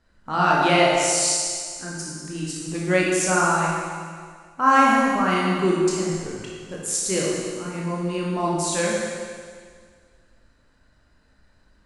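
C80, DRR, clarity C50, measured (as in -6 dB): 0.5 dB, -5.0 dB, -1.5 dB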